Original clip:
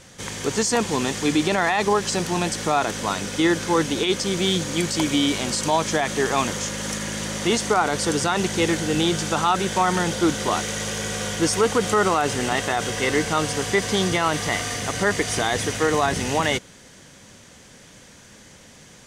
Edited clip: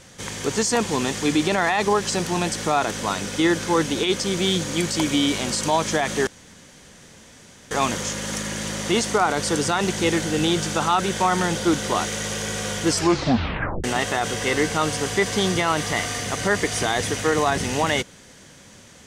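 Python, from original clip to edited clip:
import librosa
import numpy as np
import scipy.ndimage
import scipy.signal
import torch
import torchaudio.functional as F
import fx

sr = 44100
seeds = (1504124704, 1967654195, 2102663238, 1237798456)

y = fx.edit(x, sr, fx.insert_room_tone(at_s=6.27, length_s=1.44),
    fx.tape_stop(start_s=11.44, length_s=0.96), tone=tone)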